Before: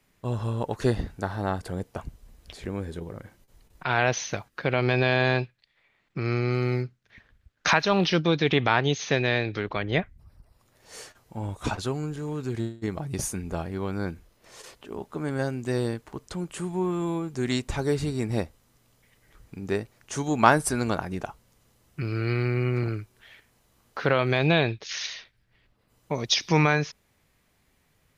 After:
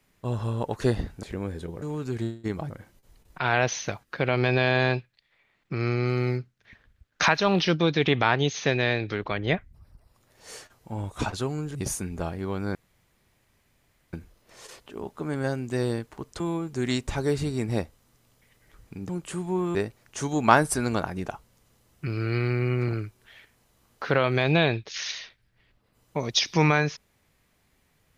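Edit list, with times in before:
0:01.23–0:02.56: remove
0:12.20–0:13.08: move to 0:03.15
0:14.08: splice in room tone 1.38 s
0:16.35–0:17.01: move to 0:19.70

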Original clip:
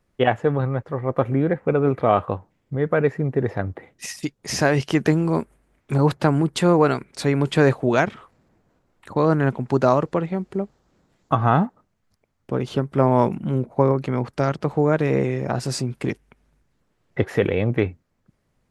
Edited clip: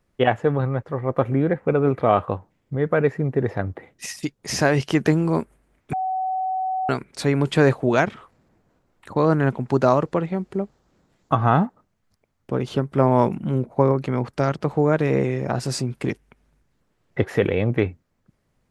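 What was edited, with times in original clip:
0:05.93–0:06.89: beep over 753 Hz −21.5 dBFS

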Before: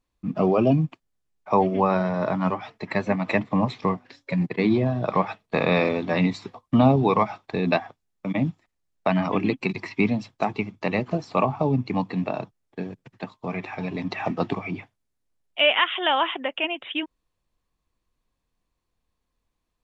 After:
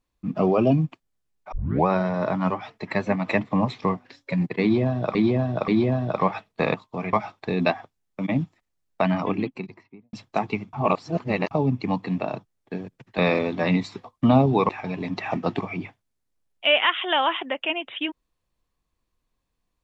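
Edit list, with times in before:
0:01.52: tape start 0.35 s
0:04.62–0:05.15: repeat, 3 plays
0:05.68–0:07.19: swap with 0:13.24–0:13.63
0:09.09–0:10.19: fade out and dull
0:10.79–0:11.57: reverse

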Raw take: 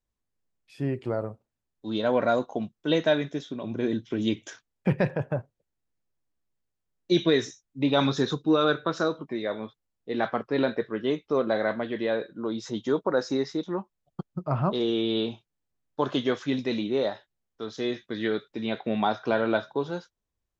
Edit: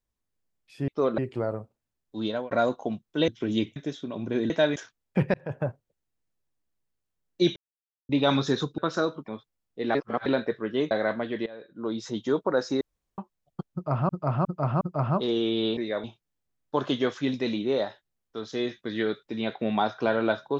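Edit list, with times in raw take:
0:01.95–0:02.21: fade out
0:02.98–0:03.24: swap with 0:03.98–0:04.46
0:05.04–0:05.30: fade in
0:07.26–0:07.79: silence
0:08.48–0:08.81: remove
0:09.31–0:09.58: move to 0:15.29
0:10.25–0:10.56: reverse
0:11.21–0:11.51: move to 0:00.88
0:12.06–0:12.47: fade in quadratic, from −18 dB
0:13.41–0:13.78: fill with room tone
0:14.33–0:14.69: repeat, 4 plays

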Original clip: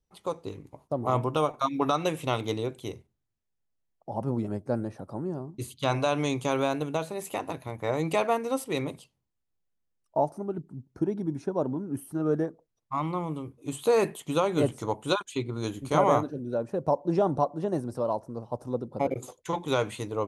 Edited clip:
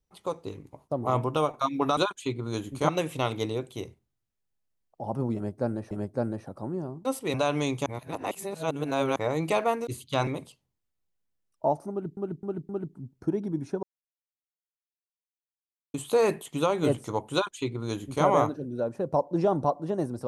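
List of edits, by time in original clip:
0:04.43–0:04.99: repeat, 2 plays
0:05.57–0:05.97: swap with 0:08.50–0:08.79
0:06.49–0:07.79: reverse
0:10.43–0:10.69: repeat, 4 plays
0:11.57–0:13.68: silence
0:15.07–0:15.99: duplicate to 0:01.97

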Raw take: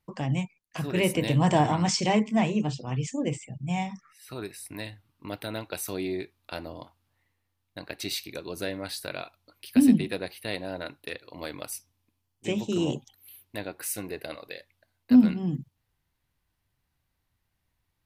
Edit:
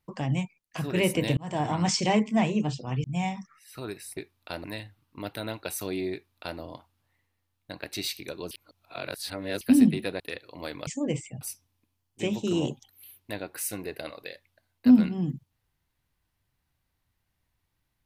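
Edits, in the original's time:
0:01.37–0:01.86: fade in
0:03.04–0:03.58: move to 0:11.66
0:06.19–0:06.66: duplicate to 0:04.71
0:08.58–0:09.68: reverse
0:10.27–0:10.99: remove

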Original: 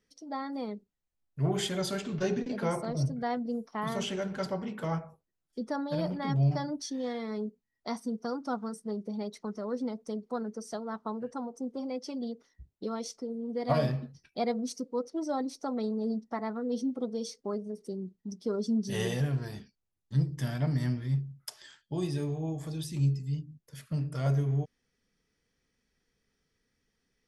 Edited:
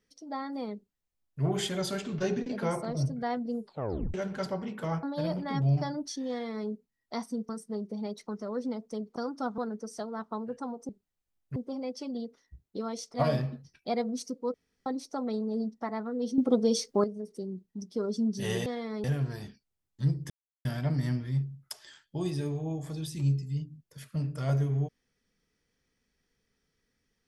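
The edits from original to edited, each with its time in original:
0:00.75–0:01.42: duplicate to 0:11.63
0:03.61: tape stop 0.53 s
0:05.03–0:05.77: remove
0:07.04–0:07.42: duplicate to 0:19.16
0:08.23–0:08.65: move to 0:10.32
0:13.21–0:13.64: remove
0:15.04–0:15.36: fill with room tone
0:16.88–0:17.54: clip gain +9.5 dB
0:20.42: splice in silence 0.35 s

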